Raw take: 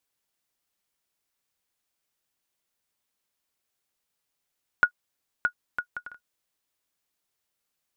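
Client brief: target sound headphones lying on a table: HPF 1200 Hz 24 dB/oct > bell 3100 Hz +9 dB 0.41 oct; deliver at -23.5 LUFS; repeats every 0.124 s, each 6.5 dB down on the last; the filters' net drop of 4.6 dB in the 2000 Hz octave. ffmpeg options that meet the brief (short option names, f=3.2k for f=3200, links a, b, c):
-af "highpass=f=1.2k:w=0.5412,highpass=f=1.2k:w=1.3066,equalizer=f=2k:t=o:g=-7.5,equalizer=f=3.1k:t=o:w=0.41:g=9,aecho=1:1:124|248|372|496|620|744:0.473|0.222|0.105|0.0491|0.0231|0.0109,volume=12.5dB"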